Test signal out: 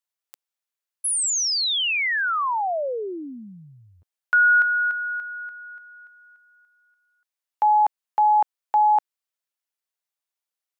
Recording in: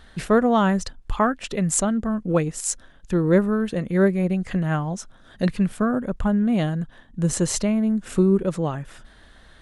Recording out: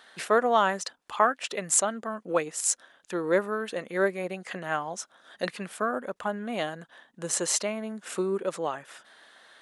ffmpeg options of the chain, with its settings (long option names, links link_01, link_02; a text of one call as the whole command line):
ffmpeg -i in.wav -af "highpass=540" out.wav